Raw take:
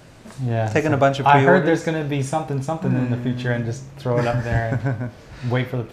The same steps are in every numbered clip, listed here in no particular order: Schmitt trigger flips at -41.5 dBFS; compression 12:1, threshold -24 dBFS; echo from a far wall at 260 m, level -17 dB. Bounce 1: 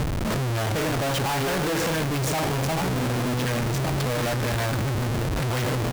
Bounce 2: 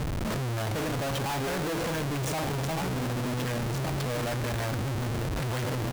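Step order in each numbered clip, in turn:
echo from a far wall > Schmitt trigger > compression; echo from a far wall > compression > Schmitt trigger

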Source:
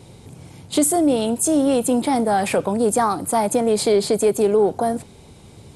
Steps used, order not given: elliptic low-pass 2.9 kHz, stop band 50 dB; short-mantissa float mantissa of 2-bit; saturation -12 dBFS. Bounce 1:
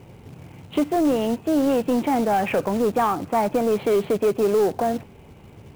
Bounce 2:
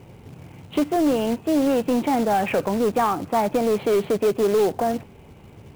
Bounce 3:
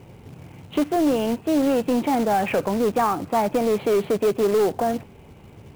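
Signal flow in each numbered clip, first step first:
elliptic low-pass > short-mantissa float > saturation; elliptic low-pass > saturation > short-mantissa float; saturation > elliptic low-pass > short-mantissa float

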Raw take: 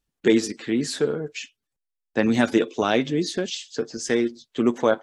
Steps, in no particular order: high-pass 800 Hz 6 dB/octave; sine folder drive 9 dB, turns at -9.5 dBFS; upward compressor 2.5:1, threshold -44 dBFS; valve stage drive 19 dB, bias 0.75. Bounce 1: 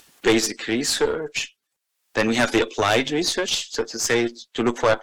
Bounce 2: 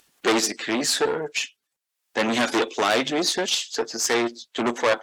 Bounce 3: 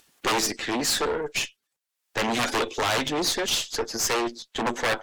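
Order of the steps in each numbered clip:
high-pass > upward compressor > valve stage > sine folder; valve stage > sine folder > upward compressor > high-pass; sine folder > high-pass > upward compressor > valve stage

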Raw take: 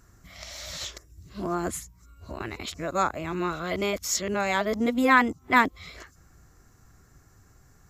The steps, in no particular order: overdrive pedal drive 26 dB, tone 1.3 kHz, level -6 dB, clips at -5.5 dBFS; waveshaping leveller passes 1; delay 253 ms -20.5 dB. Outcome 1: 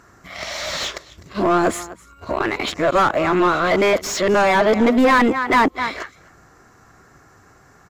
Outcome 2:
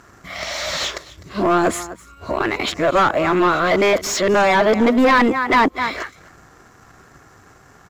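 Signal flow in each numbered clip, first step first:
delay > waveshaping leveller > overdrive pedal; delay > overdrive pedal > waveshaping leveller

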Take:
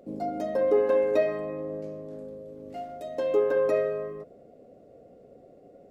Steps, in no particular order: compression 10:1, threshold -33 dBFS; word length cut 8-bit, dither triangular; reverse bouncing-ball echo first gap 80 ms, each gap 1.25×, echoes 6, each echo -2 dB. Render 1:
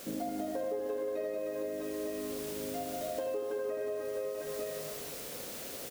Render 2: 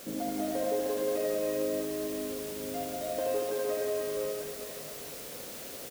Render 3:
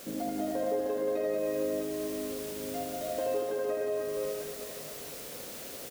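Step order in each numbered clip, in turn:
word length cut > reverse bouncing-ball echo > compression; compression > word length cut > reverse bouncing-ball echo; word length cut > compression > reverse bouncing-ball echo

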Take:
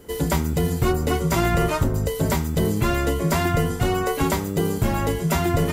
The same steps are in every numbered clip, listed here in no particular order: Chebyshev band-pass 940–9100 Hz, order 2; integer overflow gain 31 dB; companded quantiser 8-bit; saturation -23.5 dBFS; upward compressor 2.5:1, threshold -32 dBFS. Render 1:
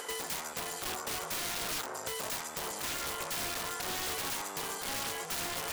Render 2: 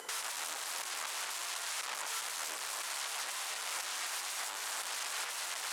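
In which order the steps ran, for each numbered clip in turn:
saturation > companded quantiser > Chebyshev band-pass > integer overflow > upward compressor; saturation > integer overflow > upward compressor > Chebyshev band-pass > companded quantiser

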